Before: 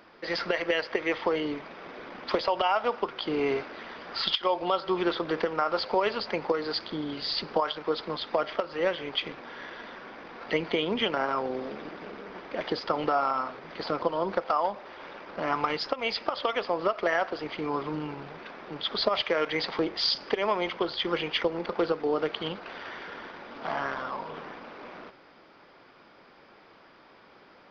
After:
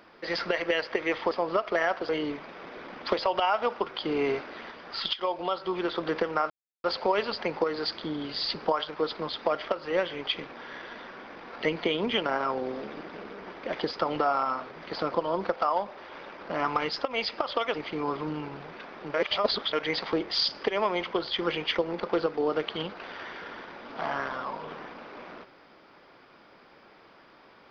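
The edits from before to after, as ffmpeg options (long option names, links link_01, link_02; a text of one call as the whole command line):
ffmpeg -i in.wav -filter_complex "[0:a]asplit=9[link_01][link_02][link_03][link_04][link_05][link_06][link_07][link_08][link_09];[link_01]atrim=end=1.312[link_10];[link_02]atrim=start=16.618:end=17.402[link_11];[link_03]atrim=start=1.308:end=3.932[link_12];[link_04]atrim=start=3.928:end=5.172,asetpts=PTS-STARTPTS,volume=-3dB[link_13];[link_05]atrim=start=5.168:end=5.72,asetpts=PTS-STARTPTS,afade=type=out:start_time=0.548:duration=0.004:curve=hsin,apad=pad_dur=0.34[link_14];[link_06]atrim=start=5.72:end=16.622,asetpts=PTS-STARTPTS,afade=type=in:duration=0.004:curve=hsin[link_15];[link_07]atrim=start=17.398:end=18.802[link_16];[link_08]atrim=start=18.798:end=19.392,asetpts=PTS-STARTPTS,areverse[link_17];[link_09]atrim=start=19.388[link_18];[link_10][link_11]acrossfade=duration=0.004:curve1=hsin:curve2=hsin[link_19];[link_19][link_12]acrossfade=duration=0.004:curve1=hsin:curve2=hsin[link_20];[link_20][link_13]acrossfade=duration=0.004:curve1=hsin:curve2=hsin[link_21];[link_14][link_15]concat=n=2:v=0:a=1[link_22];[link_21][link_22]acrossfade=duration=0.004:curve1=hsin:curve2=hsin[link_23];[link_23][link_16]acrossfade=duration=0.004:curve1=hsin:curve2=hsin[link_24];[link_24][link_17]acrossfade=duration=0.004:curve1=hsin:curve2=hsin[link_25];[link_25][link_18]acrossfade=duration=0.004:curve1=hsin:curve2=hsin" out.wav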